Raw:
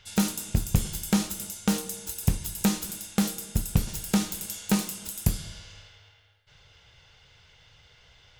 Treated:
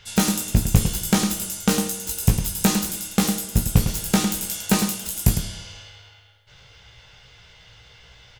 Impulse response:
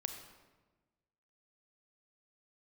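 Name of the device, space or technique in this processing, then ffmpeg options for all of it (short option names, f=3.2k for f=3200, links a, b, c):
slapback doubling: -filter_complex "[0:a]asplit=3[a][b][c];[b]adelay=17,volume=-4dB[d];[c]adelay=105,volume=-7.5dB[e];[a][d][e]amix=inputs=3:normalize=0,volume=5.5dB"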